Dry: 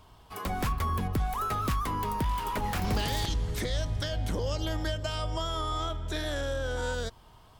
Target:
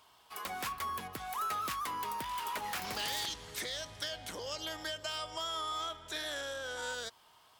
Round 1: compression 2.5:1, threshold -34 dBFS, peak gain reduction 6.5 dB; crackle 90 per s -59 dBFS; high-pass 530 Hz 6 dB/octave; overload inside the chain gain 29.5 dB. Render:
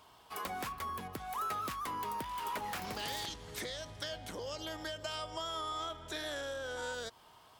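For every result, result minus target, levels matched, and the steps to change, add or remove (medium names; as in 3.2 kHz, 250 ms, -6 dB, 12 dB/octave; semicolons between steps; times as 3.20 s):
compression: peak gain reduction +6.5 dB; 500 Hz band +3.5 dB
remove: compression 2.5:1, threshold -34 dBFS, peak gain reduction 6.5 dB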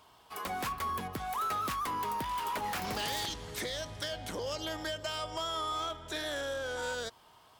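500 Hz band +3.5 dB
change: high-pass 1.4 kHz 6 dB/octave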